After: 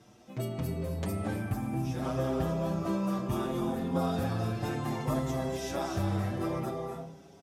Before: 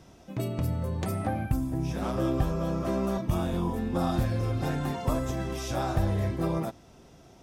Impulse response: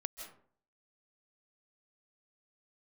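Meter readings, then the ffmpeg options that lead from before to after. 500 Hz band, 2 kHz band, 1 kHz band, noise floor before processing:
−1.5 dB, −1.5 dB, −2.0 dB, −54 dBFS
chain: -filter_complex "[0:a]highpass=100[link_01];[1:a]atrim=start_sample=2205,asetrate=27342,aresample=44100[link_02];[link_01][link_02]afir=irnorm=-1:irlink=0,asplit=2[link_03][link_04];[link_04]adelay=6.4,afreqshift=0.64[link_05];[link_03][link_05]amix=inputs=2:normalize=1"

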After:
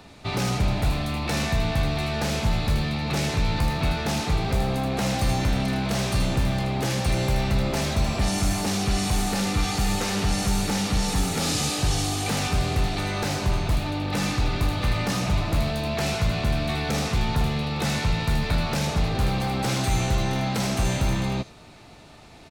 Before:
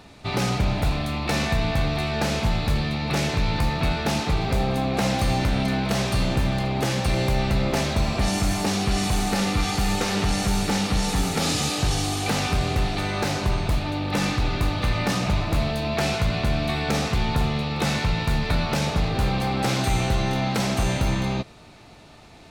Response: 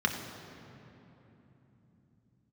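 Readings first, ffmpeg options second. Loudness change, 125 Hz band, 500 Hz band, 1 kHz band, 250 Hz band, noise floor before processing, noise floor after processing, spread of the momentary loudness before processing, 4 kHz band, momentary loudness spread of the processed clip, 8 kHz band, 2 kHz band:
−1.0 dB, −0.5 dB, −2.0 dB, −2.0 dB, −1.5 dB, −47 dBFS, −47 dBFS, 2 LU, −1.0 dB, 2 LU, +0.5 dB, −2.0 dB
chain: -filter_complex "[0:a]acrossover=split=160|5100[link_01][link_02][link_03];[link_02]asoftclip=type=tanh:threshold=-22.5dB[link_04];[link_03]aecho=1:1:78:0.631[link_05];[link_01][link_04][link_05]amix=inputs=3:normalize=0"

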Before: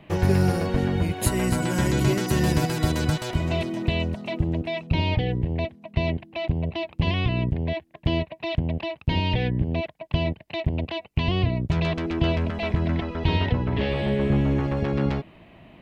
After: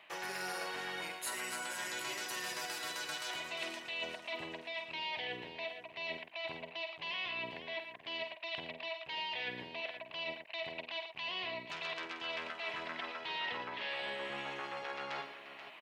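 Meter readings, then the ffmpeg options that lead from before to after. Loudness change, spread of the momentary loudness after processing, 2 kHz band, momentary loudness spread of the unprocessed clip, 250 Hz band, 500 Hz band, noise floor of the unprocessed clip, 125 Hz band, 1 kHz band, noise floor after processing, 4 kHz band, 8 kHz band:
−15.0 dB, 4 LU, −5.5 dB, 7 LU, −28.0 dB, −16.5 dB, −51 dBFS, −38.5 dB, −10.0 dB, −54 dBFS, −6.0 dB, can't be measured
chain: -af "highpass=1100,highshelf=frequency=11000:gain=-4,areverse,acompressor=threshold=-43dB:ratio=5,areverse,aecho=1:1:49|89|114|483:0.376|0.112|0.299|0.266,volume=3.5dB"

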